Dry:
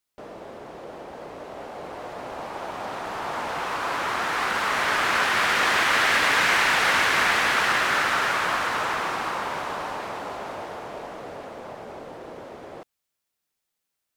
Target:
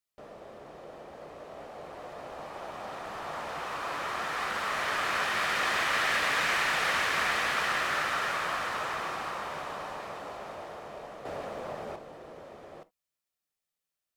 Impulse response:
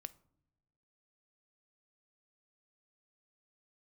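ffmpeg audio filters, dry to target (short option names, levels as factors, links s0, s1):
-filter_complex "[0:a]asettb=1/sr,asplit=3[s0][s1][s2];[s0]atrim=end=11.254[s3];[s1]atrim=start=11.25:end=11.96,asetpts=PTS-STARTPTS,afade=t=in:d=0.004:c=qsin,afade=t=out:st=0.706:d=0.004:c=qsin,acontrast=85[s4];[s2]atrim=start=11.956[s5];[s3][s4]acrossfade=d=0.004:c1=hsin:c2=qsin[s6];[s6][s5]acrossfade=d=0.004:c1=qsin:c2=hsin[s7];[1:a]atrim=start_sample=2205,atrim=end_sample=3528[s8];[s7][s8]afir=irnorm=-1:irlink=0,volume=0.75"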